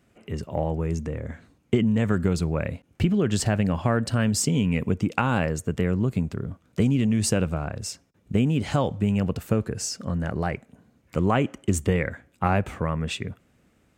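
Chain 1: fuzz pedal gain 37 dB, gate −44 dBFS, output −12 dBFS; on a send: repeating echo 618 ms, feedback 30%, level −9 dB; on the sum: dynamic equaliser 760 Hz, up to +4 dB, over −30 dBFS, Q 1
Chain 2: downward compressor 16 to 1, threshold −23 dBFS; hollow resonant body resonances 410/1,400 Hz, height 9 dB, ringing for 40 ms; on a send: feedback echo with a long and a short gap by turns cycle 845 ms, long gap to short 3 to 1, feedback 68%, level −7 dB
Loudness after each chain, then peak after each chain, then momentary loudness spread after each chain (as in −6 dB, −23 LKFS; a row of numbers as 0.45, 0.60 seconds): −15.5, −27.0 LKFS; −5.0, −7.5 dBFS; 6, 5 LU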